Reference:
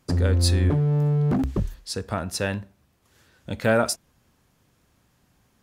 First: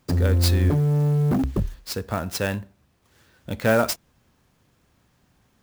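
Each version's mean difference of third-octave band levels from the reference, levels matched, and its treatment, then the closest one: 2.5 dB: sampling jitter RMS 0.02 ms; trim +1 dB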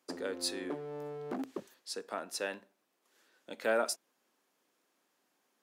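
7.0 dB: high-pass 290 Hz 24 dB/octave; trim -9 dB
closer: first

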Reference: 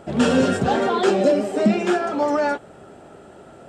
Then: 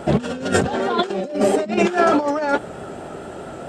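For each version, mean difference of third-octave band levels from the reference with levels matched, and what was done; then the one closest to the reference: 7.0 dB: de-hum 102.5 Hz, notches 4; vibrato 4.7 Hz 38 cents; compressor with a negative ratio -24 dBFS, ratio -0.5; trim +5.5 dB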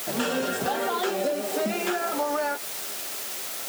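12.5 dB: word length cut 6-bit, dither triangular; high-pass 690 Hz 6 dB/octave; compression, threshold -26 dBFS, peak gain reduction 9 dB; trim +2.5 dB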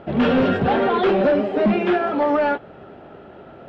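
3.5 dB: in parallel at -10.5 dB: companded quantiser 4-bit; on the sum: hard clipper -13 dBFS, distortion -13 dB; low-pass 3.4 kHz 24 dB/octave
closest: third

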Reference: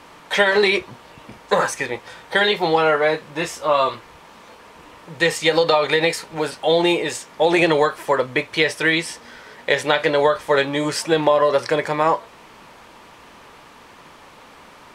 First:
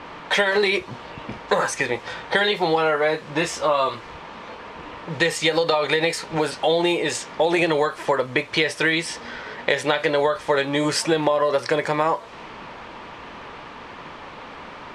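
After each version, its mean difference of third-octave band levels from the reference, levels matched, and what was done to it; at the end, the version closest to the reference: 4.0 dB: compression 3:1, threshold -27 dBFS, peak gain reduction 12 dB; level-controlled noise filter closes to 3 kHz, open at -23 dBFS; trim +7 dB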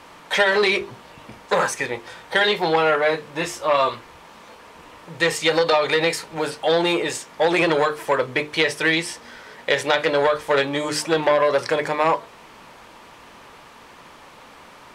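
1.5 dB: hum notches 50/100/150/200/250/300/350/400/450 Hz; transformer saturation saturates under 1.4 kHz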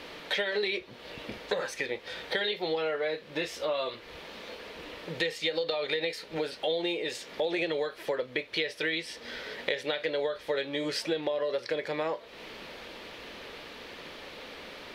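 6.5 dB: ten-band graphic EQ 125 Hz -5 dB, 500 Hz +6 dB, 1 kHz -9 dB, 2 kHz +3 dB, 4 kHz +8 dB, 8 kHz -9 dB; compression 4:1, threshold -31 dBFS, peak gain reduction 19 dB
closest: second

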